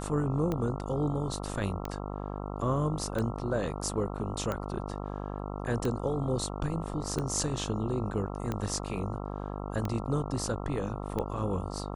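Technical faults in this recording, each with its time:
mains buzz 50 Hz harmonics 27 −37 dBFS
scratch tick 45 rpm −19 dBFS

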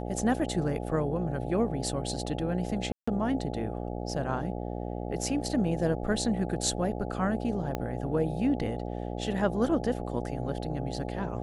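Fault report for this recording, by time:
mains buzz 60 Hz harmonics 14 −35 dBFS
0:02.92–0:03.08: drop-out 155 ms
0:07.75: click −17 dBFS

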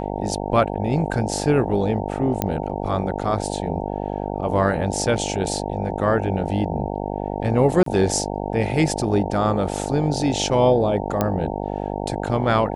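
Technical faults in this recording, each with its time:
mains buzz 50 Hz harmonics 18 −27 dBFS
0:02.42: click −6 dBFS
0:07.83–0:07.86: drop-out 33 ms
0:11.21: click −7 dBFS

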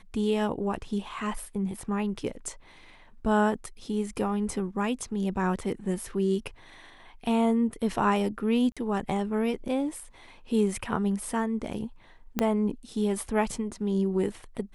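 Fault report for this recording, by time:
0:08.72–0:08.77: drop-out 46 ms
0:12.39: click −10 dBFS

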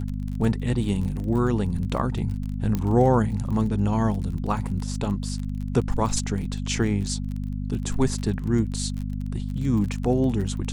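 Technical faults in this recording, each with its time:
surface crackle 27 per second −31 dBFS
mains hum 50 Hz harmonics 5 −29 dBFS
0:02.75: click −13 dBFS

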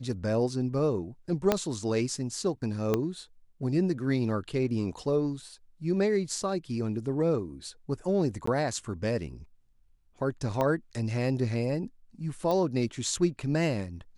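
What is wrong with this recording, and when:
0:01.52: click −9 dBFS
0:02.94: click −13 dBFS
0:08.46–0:08.47: drop-out 14 ms
0:10.61: click −16 dBFS
0:12.51: click −18 dBFS

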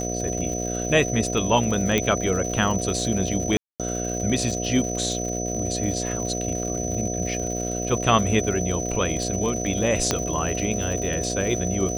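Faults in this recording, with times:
mains buzz 60 Hz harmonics 12 −29 dBFS
surface crackle 150 per second −30 dBFS
whistle 6,000 Hz −30 dBFS
0:01.98: click −7 dBFS
0:03.57–0:03.80: drop-out 227 ms
0:10.11: click −6 dBFS

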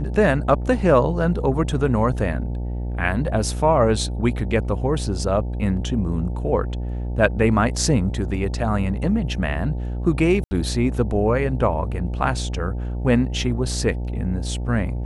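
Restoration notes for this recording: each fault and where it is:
mains buzz 60 Hz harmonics 15 −26 dBFS
0:10.44–0:10.51: drop-out 70 ms

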